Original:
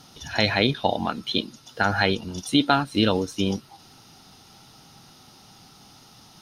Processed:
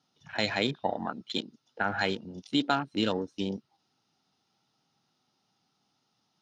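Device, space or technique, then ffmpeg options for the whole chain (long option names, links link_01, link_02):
over-cleaned archive recording: -af "highpass=140,lowpass=6300,afwtdn=0.0224,volume=-7dB"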